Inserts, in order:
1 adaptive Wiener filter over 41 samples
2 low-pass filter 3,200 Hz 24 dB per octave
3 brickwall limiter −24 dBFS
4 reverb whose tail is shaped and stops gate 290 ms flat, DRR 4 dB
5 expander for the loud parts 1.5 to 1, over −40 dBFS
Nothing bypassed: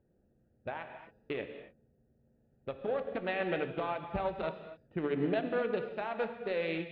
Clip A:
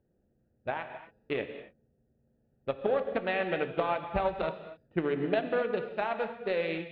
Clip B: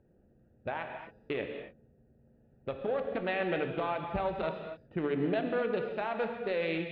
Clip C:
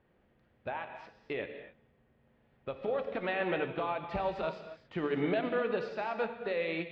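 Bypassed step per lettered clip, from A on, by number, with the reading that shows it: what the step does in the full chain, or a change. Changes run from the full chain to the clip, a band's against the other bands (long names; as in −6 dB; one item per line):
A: 3, average gain reduction 2.0 dB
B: 5, change in momentary loudness spread −3 LU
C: 1, 125 Hz band −2.0 dB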